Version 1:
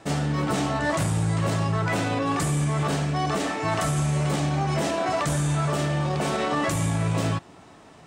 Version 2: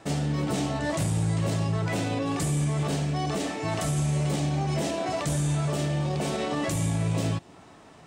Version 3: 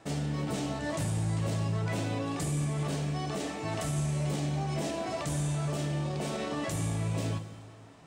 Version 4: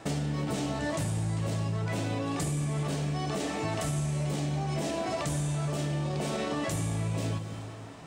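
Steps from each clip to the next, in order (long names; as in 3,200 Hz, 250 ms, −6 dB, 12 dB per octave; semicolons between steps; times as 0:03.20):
dynamic equaliser 1,300 Hz, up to −8 dB, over −42 dBFS, Q 1.1; level −1.5 dB
dense smooth reverb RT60 2 s, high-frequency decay 0.85×, DRR 8.5 dB; level −5.5 dB
downward compressor 4 to 1, threshold −37 dBFS, peak gain reduction 9 dB; level +8 dB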